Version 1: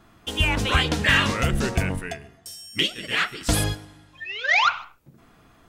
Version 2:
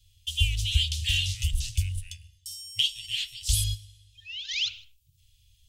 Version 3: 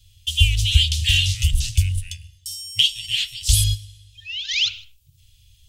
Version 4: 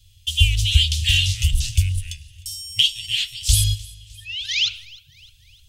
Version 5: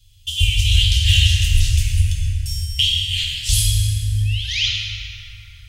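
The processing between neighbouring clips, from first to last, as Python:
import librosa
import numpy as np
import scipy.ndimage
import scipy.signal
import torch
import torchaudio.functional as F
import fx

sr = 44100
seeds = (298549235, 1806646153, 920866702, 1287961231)

y1 = scipy.signal.sosfilt(scipy.signal.cheby1(4, 1.0, [100.0, 3000.0], 'bandstop', fs=sr, output='sos'), x)
y2 = fx.peak_eq(y1, sr, hz=400.0, db=13.0, octaves=1.8)
y2 = y2 * 10.0 ** (7.5 / 20.0)
y3 = fx.echo_feedback(y2, sr, ms=305, feedback_pct=53, wet_db=-23.0)
y4 = fx.rev_plate(y3, sr, seeds[0], rt60_s=4.5, hf_ratio=0.35, predelay_ms=0, drr_db=-4.5)
y4 = y4 * 10.0 ** (-2.0 / 20.0)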